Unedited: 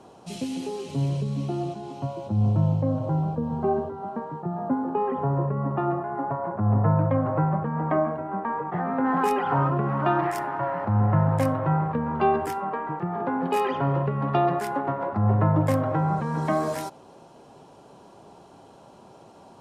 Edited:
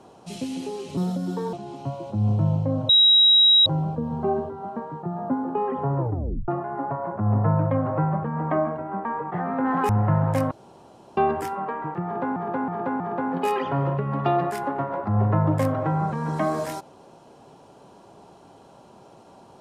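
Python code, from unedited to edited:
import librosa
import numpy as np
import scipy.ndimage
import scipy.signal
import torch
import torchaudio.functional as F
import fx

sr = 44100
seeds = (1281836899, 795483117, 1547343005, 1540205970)

y = fx.edit(x, sr, fx.speed_span(start_s=0.97, length_s=0.73, speed=1.3),
    fx.insert_tone(at_s=3.06, length_s=0.77, hz=3840.0, db=-12.0),
    fx.tape_stop(start_s=5.39, length_s=0.49),
    fx.cut(start_s=9.29, length_s=1.65),
    fx.room_tone_fill(start_s=11.56, length_s=0.66),
    fx.repeat(start_s=13.09, length_s=0.32, count=4), tone=tone)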